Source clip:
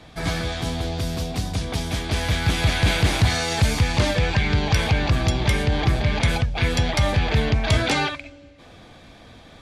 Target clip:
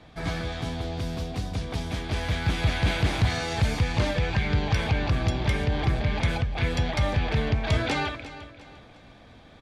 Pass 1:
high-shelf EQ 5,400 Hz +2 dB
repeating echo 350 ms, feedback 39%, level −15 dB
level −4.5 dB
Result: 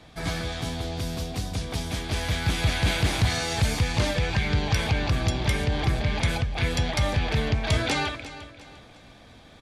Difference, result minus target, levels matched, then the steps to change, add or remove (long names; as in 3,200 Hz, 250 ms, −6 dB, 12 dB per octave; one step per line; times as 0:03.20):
8,000 Hz band +6.5 dB
change: high-shelf EQ 5,400 Hz −10 dB